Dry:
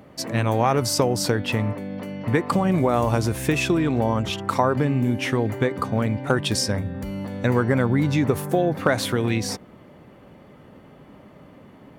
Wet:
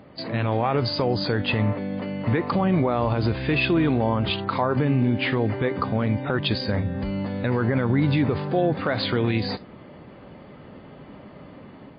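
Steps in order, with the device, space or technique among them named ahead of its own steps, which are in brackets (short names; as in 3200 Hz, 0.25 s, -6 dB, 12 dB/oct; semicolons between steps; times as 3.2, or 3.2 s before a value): low-bitrate web radio (AGC gain up to 4 dB; limiter -11.5 dBFS, peak gain reduction 8.5 dB; MP3 24 kbps 11025 Hz)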